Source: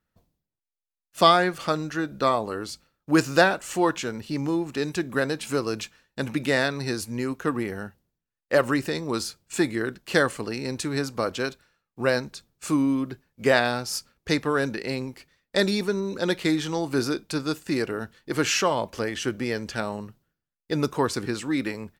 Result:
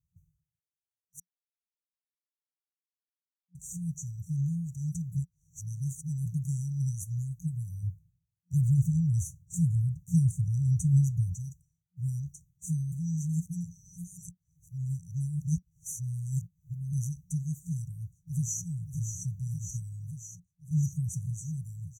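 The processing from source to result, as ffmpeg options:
ffmpeg -i in.wav -filter_complex "[0:a]asettb=1/sr,asplit=3[link_01][link_02][link_03];[link_01]atrim=end=7.834[link_04];[link_02]atrim=start=7.83:end=11.35,asetpts=PTS-STARTPTS,afade=type=in:duration=0.004:curve=qsin,afade=type=out:start_time=3.516:duration=0.004:curve=qsin,equalizer=frequency=90:width_type=o:width=1.9:gain=11[link_05];[link_03]atrim=start=11.346[link_06];[link_04][link_05]acrossfade=duration=0.004:curve1=hsin:curve2=qsin[link_07];[link_07][link_06]acrossfade=duration=0.004:curve1=qsin:curve2=hsin,asplit=2[link_08][link_09];[link_09]afade=type=in:start_time=17.8:duration=0.01,afade=type=out:start_time=18.65:duration=0.01,aecho=0:1:580|1160|1740|2320|2900|3480|4060|4640|5220|5800|6380|6960:0.446684|0.335013|0.25126|0.188445|0.141333|0.106|0.0795001|0.0596251|0.0447188|0.0335391|0.0251543|0.0188657[link_10];[link_08][link_10]amix=inputs=2:normalize=0,asplit=7[link_11][link_12][link_13][link_14][link_15][link_16][link_17];[link_11]atrim=end=1.2,asetpts=PTS-STARTPTS,afade=type=out:start_time=1.196:duration=0.004:curve=hsin[link_18];[link_12]atrim=start=1.2:end=3.55,asetpts=PTS-STARTPTS,volume=0[link_19];[link_13]atrim=start=3.55:end=5.162,asetpts=PTS-STARTPTS,afade=type=in:duration=0.004:curve=hsin[link_20];[link_14]atrim=start=5.158:end=6.262,asetpts=PTS-STARTPTS,areverse[link_21];[link_15]atrim=start=6.258:end=12.922[link_22];[link_16]atrim=start=12.918:end=16.932,asetpts=PTS-STARTPTS,areverse[link_23];[link_17]atrim=start=16.928[link_24];[link_18][link_19][link_20]concat=n=3:v=0:a=1[link_25];[link_25][link_21]acrossfade=duration=0.004:curve1=hsin:curve2=hsin[link_26];[link_26][link_22]acrossfade=duration=0.004:curve1=hsin:curve2=hsin[link_27];[link_27][link_23]acrossfade=duration=0.004:curve1=hsin:curve2=hsin[link_28];[link_28][link_24]acrossfade=duration=0.004:curve1=hsin:curve2=hsin,highshelf=frequency=3900:gain=-11.5,afftfilt=real='re*(1-between(b*sr/4096,180,5800))':imag='im*(1-between(b*sr/4096,180,5800))':win_size=4096:overlap=0.75,highpass=51,volume=5dB" out.wav

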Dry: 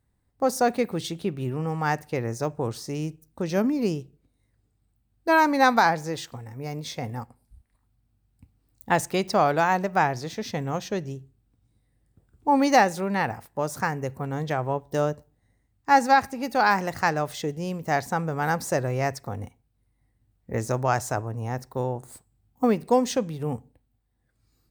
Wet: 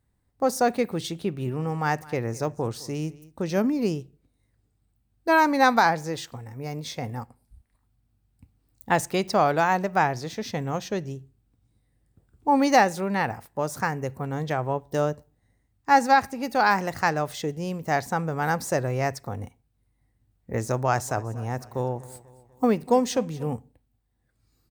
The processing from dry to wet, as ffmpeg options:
ffmpeg -i in.wav -filter_complex "[0:a]asplit=3[link_01][link_02][link_03];[link_01]afade=type=out:start_time=1.44:duration=0.02[link_04];[link_02]aecho=1:1:209:0.0944,afade=type=in:start_time=1.44:duration=0.02,afade=type=out:start_time=3.51:duration=0.02[link_05];[link_03]afade=type=in:start_time=3.51:duration=0.02[link_06];[link_04][link_05][link_06]amix=inputs=3:normalize=0,asettb=1/sr,asplit=3[link_07][link_08][link_09];[link_07]atrim=end=20.704[link_10];[link_08]atrim=start=20.7:end=23.54,asetpts=PTS-STARTPTS,afade=type=in:duration=0.004:curve=qsin,afade=type=out:start_time=2.836:duration=0.004:curve=qsin,aecho=1:1:245|490|735|980:0.1|0.05|0.025|0.0125,atrim=end_sample=125244[link_11];[link_09]atrim=start=23.536[link_12];[link_10][link_11]acrossfade=duration=0.004:curve1=hsin:curve2=qsin[link_13];[link_13][link_12]acrossfade=duration=0.004:curve1=qsin:curve2=hsin" out.wav

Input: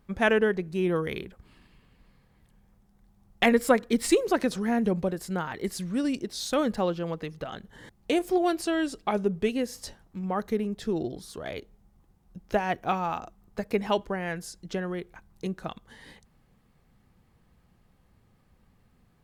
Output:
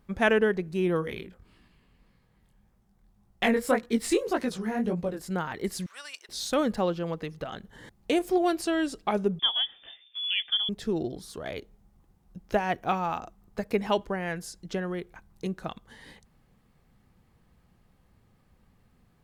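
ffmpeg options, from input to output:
ffmpeg -i in.wav -filter_complex "[0:a]asplit=3[link_01][link_02][link_03];[link_01]afade=type=out:start_time=1.01:duration=0.02[link_04];[link_02]flanger=delay=16.5:depth=6.7:speed=1.8,afade=type=in:start_time=1.01:duration=0.02,afade=type=out:start_time=5.25:duration=0.02[link_05];[link_03]afade=type=in:start_time=5.25:duration=0.02[link_06];[link_04][link_05][link_06]amix=inputs=3:normalize=0,asettb=1/sr,asplit=3[link_07][link_08][link_09];[link_07]atrim=end=5.864[link_10];[link_08]atrim=start=5.86:end=6.29,asetpts=PTS-STARTPTS,afade=type=in:duration=0.004:curve=qsin,afade=type=out:start_time=0.426:duration=0.004:curve=qsin,highpass=frequency=910:width=0.5412,highpass=frequency=910:width=1.3066[link_11];[link_09]atrim=start=6.286[link_12];[link_10][link_11]acrossfade=duration=0.004:curve1=hsin:curve2=qsin[link_13];[link_13][link_12]acrossfade=duration=0.004:curve1=qsin:curve2=hsin,asettb=1/sr,asplit=3[link_14][link_15][link_16];[link_14]atrim=end=9.394[link_17];[link_15]atrim=start=9.39:end=10.69,asetpts=PTS-STARTPTS,afade=type=in:duration=0.004:curve=qsin,afade=type=out:start_time=1.296:duration=0.004:curve=qsin,lowpass=frequency=3100:width_type=q:width=0.5098,lowpass=frequency=3100:width_type=q:width=0.6013,lowpass=frequency=3100:width_type=q:width=0.9,lowpass=frequency=3100:width_type=q:width=2.563,afreqshift=-3600[link_18];[link_16]atrim=start=10.686[link_19];[link_17][link_18]acrossfade=duration=0.004:curve1=hsin:curve2=qsin[link_20];[link_20][link_19]acrossfade=duration=0.004:curve1=qsin:curve2=hsin" out.wav

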